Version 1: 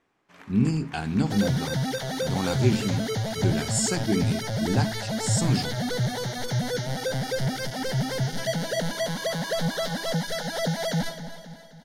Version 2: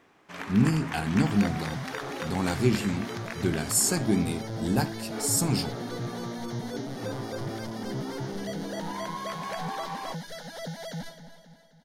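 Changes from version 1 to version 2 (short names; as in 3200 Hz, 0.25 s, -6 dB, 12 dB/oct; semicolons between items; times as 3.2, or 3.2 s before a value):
speech: remove LPF 8000 Hz 24 dB/oct; first sound +11.5 dB; second sound -10.5 dB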